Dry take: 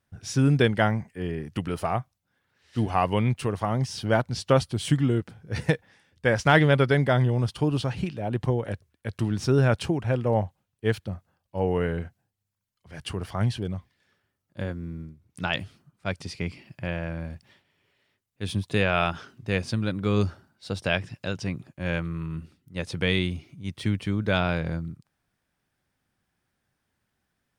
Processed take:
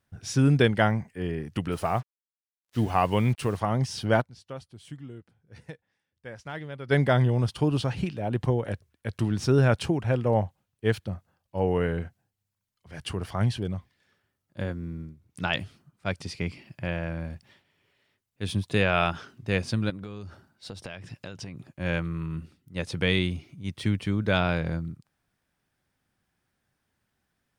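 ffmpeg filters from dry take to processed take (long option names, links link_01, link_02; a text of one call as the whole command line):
ffmpeg -i in.wav -filter_complex "[0:a]asettb=1/sr,asplit=3[link_01][link_02][link_03];[link_01]atrim=end=1.724[link_04];[link_02]atrim=start=1.72:end=3.57,asetpts=PTS-STARTPTS,afade=type=in:duration=0.004:curve=qsin,afade=type=out:start_time=1.846:duration=0.004:curve=qsin,acrusher=bits=7:mix=0:aa=0.5[link_05];[link_03]atrim=start=3.566[link_06];[link_04][link_05]acrossfade=duration=0.004:curve1=hsin:curve2=qsin[link_07];[link_07][link_06]acrossfade=duration=0.004:curve1=qsin:curve2=hsin,asettb=1/sr,asplit=3[link_08][link_09][link_10];[link_08]atrim=end=19.904[link_11];[link_09]atrim=start=19.9:end=21.71,asetpts=PTS-STARTPTS,afade=type=in:duration=0.004:curve=qsin,afade=type=out:start_time=1.806:duration=0.004:curve=qsin,acompressor=threshold=-34dB:ratio=16:attack=3.2:release=140:knee=1:detection=peak[link_12];[link_10]atrim=start=21.706[link_13];[link_11][link_12]acrossfade=duration=0.004:curve1=hsin:curve2=qsin[link_14];[link_14][link_13]acrossfade=duration=0.004:curve1=qsin:curve2=hsin,asplit=3[link_15][link_16][link_17];[link_15]atrim=end=4.51,asetpts=PTS-STARTPTS,afade=type=out:start_time=4.2:duration=0.31:curve=exp:silence=0.112202[link_18];[link_16]atrim=start=4.51:end=6.62,asetpts=PTS-STARTPTS,volume=-19dB[link_19];[link_17]atrim=start=6.62,asetpts=PTS-STARTPTS,afade=type=in:duration=0.31:curve=exp:silence=0.112202[link_20];[link_18][link_19][link_20]concat=n=3:v=0:a=1" out.wav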